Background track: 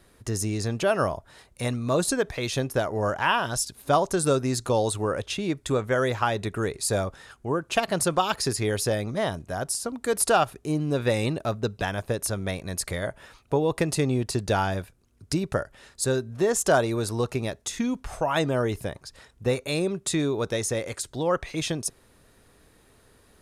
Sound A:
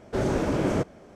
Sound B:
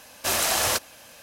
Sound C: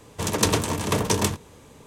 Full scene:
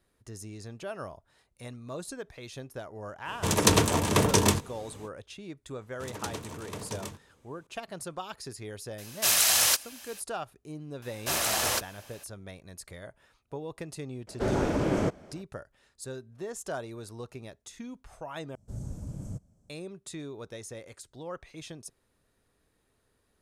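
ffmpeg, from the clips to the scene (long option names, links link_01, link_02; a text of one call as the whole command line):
ffmpeg -i bed.wav -i cue0.wav -i cue1.wav -i cue2.wav -filter_complex "[3:a]asplit=2[link_01][link_02];[2:a]asplit=2[link_03][link_04];[1:a]asplit=2[link_05][link_06];[0:a]volume=-15dB[link_07];[link_03]tiltshelf=frequency=1300:gain=-7.5[link_08];[link_06]firequalizer=gain_entry='entry(110,0);entry(370,-25);entry(530,-21);entry(2000,-30);entry(7400,-3)':delay=0.05:min_phase=1[link_09];[link_07]asplit=2[link_10][link_11];[link_10]atrim=end=18.554[link_12];[link_09]atrim=end=1.15,asetpts=PTS-STARTPTS,volume=-5.5dB[link_13];[link_11]atrim=start=19.696[link_14];[link_01]atrim=end=1.86,asetpts=PTS-STARTPTS,afade=type=in:duration=0.05,afade=type=out:start_time=1.81:duration=0.05,adelay=3240[link_15];[link_02]atrim=end=1.86,asetpts=PTS-STARTPTS,volume=-16.5dB,afade=type=in:duration=0.004:curve=hsin,afade=type=out:start_time=1.856:duration=0.004:curve=hsin,adelay=256221S[link_16];[link_08]atrim=end=1.22,asetpts=PTS-STARTPTS,volume=-4.5dB,afade=type=in:duration=0.004:curve=hsin,afade=type=out:start_time=1.216:duration=0.004:curve=hsin,adelay=396018S[link_17];[link_04]atrim=end=1.22,asetpts=PTS-STARTPTS,volume=-4.5dB,afade=type=in:duration=0.004:curve=hsin,afade=type=out:start_time=1.216:duration=0.004:curve=hsin,adelay=11020[link_18];[link_05]atrim=end=1.15,asetpts=PTS-STARTPTS,volume=-2dB,afade=type=in:duration=0.004:curve=hsin,afade=type=out:start_time=1.146:duration=0.004:curve=hsin,adelay=14270[link_19];[link_12][link_13]acrossfade=duration=0.004:curve1=hsin:curve2=hsin[link_20];[link_20][link_14]acrossfade=duration=0.004:curve1=hsin:curve2=hsin[link_21];[link_21][link_15][link_16][link_17][link_18][link_19]amix=inputs=6:normalize=0" out.wav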